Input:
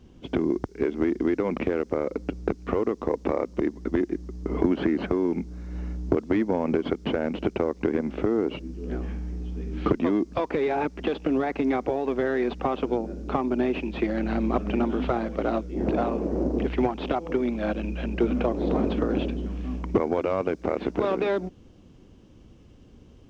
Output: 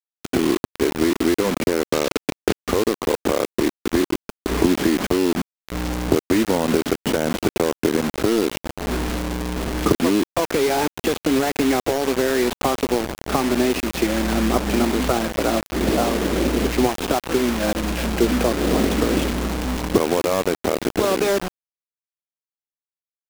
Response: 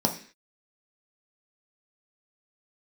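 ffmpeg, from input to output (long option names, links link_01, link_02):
-filter_complex "[0:a]acrusher=bits=4:mix=0:aa=0.000001,asettb=1/sr,asplit=3[link_01][link_02][link_03];[link_01]atrim=end=1.884[link_04];[link_02]atrim=start=1.88:end=2.59,asetpts=PTS-STARTPTS,afade=type=in:duration=0.004:curve=qsin,afade=type=out:start_time=0.706:duration=0.004:curve=qsin,equalizer=frequency=3700:width_type=o:width=2.3:gain=5.5[link_05];[link_03]atrim=start=2.586[link_06];[link_04][link_05]acrossfade=duration=0.004:curve1=hsin:curve2=qsin[link_07];[link_07][link_06]acrossfade=duration=0.004:curve1=qsin:curve2=hsin,volume=5dB"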